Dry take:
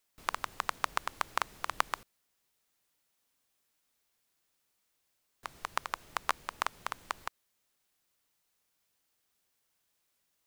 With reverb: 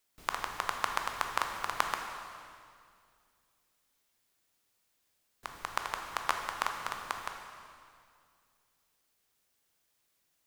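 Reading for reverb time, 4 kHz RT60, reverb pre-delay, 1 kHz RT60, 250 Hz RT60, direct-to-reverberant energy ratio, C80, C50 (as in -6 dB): 2.2 s, 2.0 s, 12 ms, 2.1 s, 2.6 s, 3.0 dB, 5.5 dB, 4.5 dB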